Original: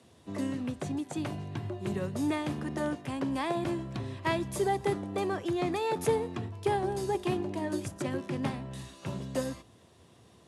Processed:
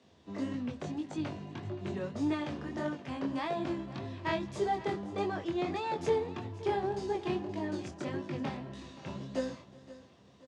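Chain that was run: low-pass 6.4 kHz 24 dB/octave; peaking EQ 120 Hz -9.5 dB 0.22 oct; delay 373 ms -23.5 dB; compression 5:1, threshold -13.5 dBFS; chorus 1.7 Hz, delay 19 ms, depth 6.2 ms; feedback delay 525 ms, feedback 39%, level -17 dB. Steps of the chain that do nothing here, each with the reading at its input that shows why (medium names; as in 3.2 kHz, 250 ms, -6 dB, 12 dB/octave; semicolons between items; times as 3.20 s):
compression, threshold -13.5 dBFS: peak at its input -15.5 dBFS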